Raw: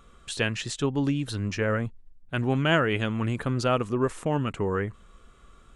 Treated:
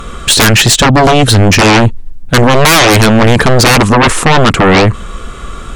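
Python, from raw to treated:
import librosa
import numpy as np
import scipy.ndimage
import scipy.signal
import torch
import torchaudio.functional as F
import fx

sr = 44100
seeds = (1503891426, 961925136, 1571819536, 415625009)

p1 = fx.rider(x, sr, range_db=3, speed_s=2.0)
p2 = x + F.gain(torch.from_numpy(p1), 0.5).numpy()
p3 = fx.fold_sine(p2, sr, drive_db=18, ceiling_db=-3.5)
y = F.gain(torch.from_numpy(p3), 1.0).numpy()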